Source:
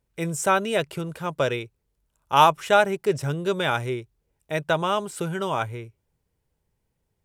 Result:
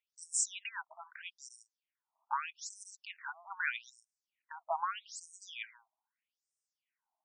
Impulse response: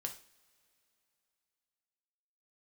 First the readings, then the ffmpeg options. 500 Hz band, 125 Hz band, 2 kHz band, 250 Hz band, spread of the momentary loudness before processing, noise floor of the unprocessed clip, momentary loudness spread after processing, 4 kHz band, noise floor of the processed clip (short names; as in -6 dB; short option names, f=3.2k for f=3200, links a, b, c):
-28.0 dB, under -40 dB, -12.5 dB, under -40 dB, 14 LU, -76 dBFS, 17 LU, -16.5 dB, under -85 dBFS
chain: -af "equalizer=f=250:t=o:w=0.33:g=12,equalizer=f=1.25k:t=o:w=0.33:g=-10,equalizer=f=4k:t=o:w=0.33:g=-11,alimiter=limit=-17dB:level=0:latency=1:release=29,afftfilt=real='re*between(b*sr/1024,900*pow(7100/900,0.5+0.5*sin(2*PI*0.8*pts/sr))/1.41,900*pow(7100/900,0.5+0.5*sin(2*PI*0.8*pts/sr))*1.41)':imag='im*between(b*sr/1024,900*pow(7100/900,0.5+0.5*sin(2*PI*0.8*pts/sr))/1.41,900*pow(7100/900,0.5+0.5*sin(2*PI*0.8*pts/sr))*1.41)':win_size=1024:overlap=0.75,volume=1dB"